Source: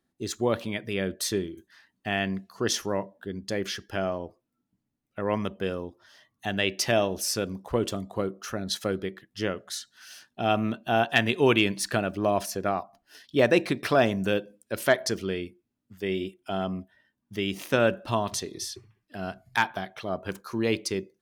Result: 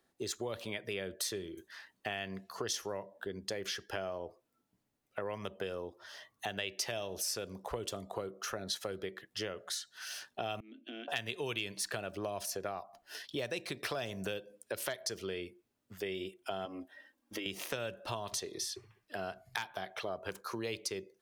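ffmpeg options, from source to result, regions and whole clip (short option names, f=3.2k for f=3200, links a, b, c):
-filter_complex "[0:a]asettb=1/sr,asplit=3[a][b][c];[a]atrim=end=10.604[d];[b]atrim=start=10.6:end=11.08,asetpts=PTS-STARTPTS,afade=t=in:d=0.004:c=qsin,afade=t=out:st=0.476:d=0.004:c=qsin,asplit=3[e][f][g];[e]bandpass=f=270:t=q:w=8,volume=0dB[h];[f]bandpass=f=2.29k:t=q:w=8,volume=-6dB[i];[g]bandpass=f=3.01k:t=q:w=8,volume=-9dB[j];[h][i][j]amix=inputs=3:normalize=0,acompressor=threshold=-43dB:ratio=6:attack=3.2:release=140:knee=1:detection=peak,lowshelf=f=190:t=q:w=3:g=-12.5[k];[c]atrim=start=11.076[l];[d][k]acrossfade=d=0.004:c1=hsin:c2=qsin[m];[m][l]acrossfade=d=0.004:c1=qsin:c2=hsin,asettb=1/sr,asplit=3[n][o][p];[n]atrim=end=16.654[q];[o]atrim=start=16.65:end=17.46,asetpts=PTS-STARTPTS,afade=t=in:d=0.004:c=qsin,afade=t=out:st=0.806:d=0.004:c=qsin,lowshelf=f=220:t=q:w=3:g=-6.5,aecho=1:1:3.7:0.7,atrim=end_sample=35721,acompressor=threshold=-32dB:ratio=4:attack=3.2:release=140:knee=1:detection=peak[r];[p]atrim=start=17.456[s];[q][r]acrossfade=d=0.004:c1=hsin:c2=qsin[t];[t][s]acrossfade=d=0.004:c1=qsin:c2=hsin,acrossover=split=170|3000[u][v][w];[v]acompressor=threshold=-31dB:ratio=6[x];[u][x][w]amix=inputs=3:normalize=0,lowshelf=f=340:t=q:w=1.5:g=-7,acompressor=threshold=-45dB:ratio=2.5,volume=5dB"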